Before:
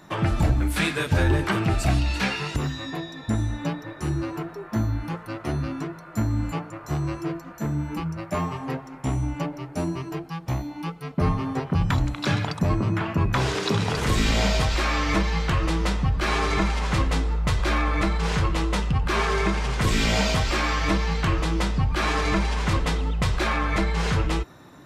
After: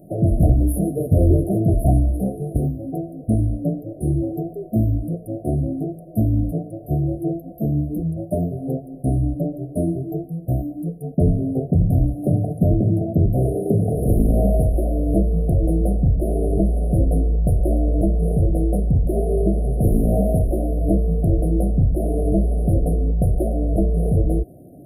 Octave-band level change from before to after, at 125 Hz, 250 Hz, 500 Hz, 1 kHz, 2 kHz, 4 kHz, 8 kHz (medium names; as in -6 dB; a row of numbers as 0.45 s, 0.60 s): +6.0 dB, +6.0 dB, +6.0 dB, -7.5 dB, under -40 dB, under -40 dB, no reading